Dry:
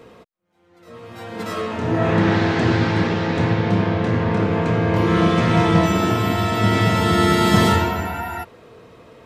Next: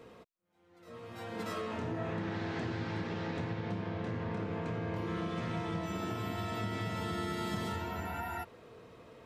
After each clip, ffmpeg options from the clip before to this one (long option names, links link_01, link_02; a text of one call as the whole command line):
ffmpeg -i in.wav -af "acompressor=threshold=-25dB:ratio=6,volume=-9dB" out.wav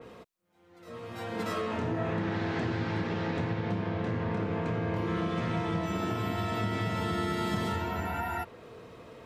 ffmpeg -i in.wav -af "adynamicequalizer=threshold=0.00158:dfrequency=3600:dqfactor=0.7:tfrequency=3600:tqfactor=0.7:attack=5:release=100:ratio=0.375:range=1.5:mode=cutabove:tftype=highshelf,volume=5.5dB" out.wav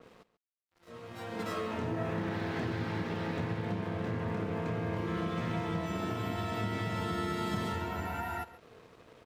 ffmpeg -i in.wav -af "aeval=exprs='sgn(val(0))*max(abs(val(0))-0.00251,0)':channel_layout=same,aecho=1:1:138:0.141,volume=-2.5dB" out.wav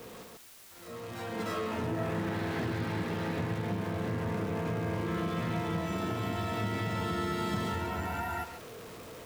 ffmpeg -i in.wav -af "aeval=exprs='val(0)+0.5*0.00841*sgn(val(0))':channel_layout=same" out.wav